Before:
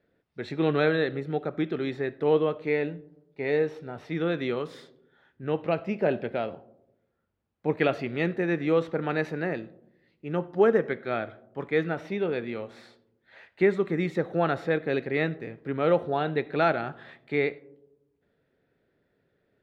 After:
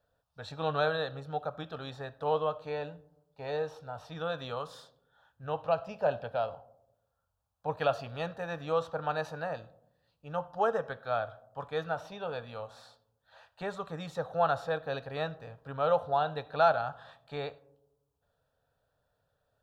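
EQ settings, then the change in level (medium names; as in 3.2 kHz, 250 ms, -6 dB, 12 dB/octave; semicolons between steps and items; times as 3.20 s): peaking EQ 210 Hz -14.5 dB 1.1 oct; static phaser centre 870 Hz, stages 4; +3.0 dB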